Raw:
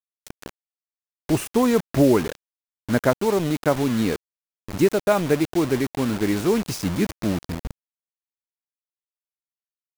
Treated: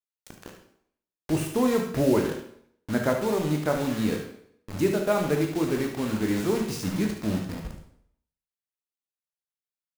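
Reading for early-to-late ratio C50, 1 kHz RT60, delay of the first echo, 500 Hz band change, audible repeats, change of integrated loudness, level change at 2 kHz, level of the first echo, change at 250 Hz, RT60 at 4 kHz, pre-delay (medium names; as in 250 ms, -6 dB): 5.0 dB, 0.65 s, 73 ms, -4.5 dB, 1, -4.5 dB, -4.0 dB, -9.0 dB, -4.0 dB, 0.60 s, 13 ms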